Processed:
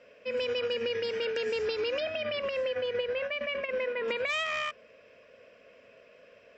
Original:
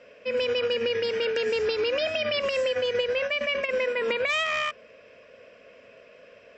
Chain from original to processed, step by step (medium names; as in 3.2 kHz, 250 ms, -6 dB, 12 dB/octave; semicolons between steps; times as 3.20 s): 2.00–4.08 s: Gaussian low-pass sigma 1.9 samples; trim -5 dB